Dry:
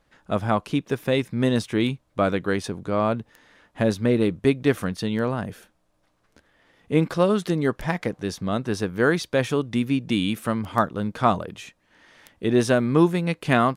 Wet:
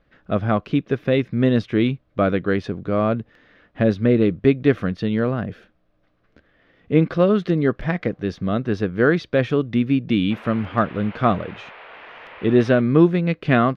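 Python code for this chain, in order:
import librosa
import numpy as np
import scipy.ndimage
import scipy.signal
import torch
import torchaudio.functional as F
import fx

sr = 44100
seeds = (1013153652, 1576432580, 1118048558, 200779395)

y = fx.peak_eq(x, sr, hz=910.0, db=-10.5, octaves=0.39)
y = fx.dmg_noise_band(y, sr, seeds[0], low_hz=420.0, high_hz=2800.0, level_db=-44.0, at=(10.3, 12.8), fade=0.02)
y = fx.air_absorb(y, sr, metres=270.0)
y = y * 10.0 ** (4.5 / 20.0)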